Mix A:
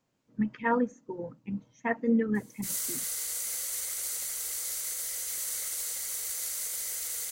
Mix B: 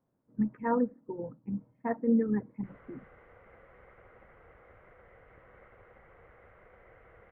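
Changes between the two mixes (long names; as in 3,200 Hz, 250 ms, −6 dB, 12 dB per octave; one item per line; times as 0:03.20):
background: add parametric band 100 Hz +10 dB 0.98 octaves
master: add Gaussian smoothing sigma 6.1 samples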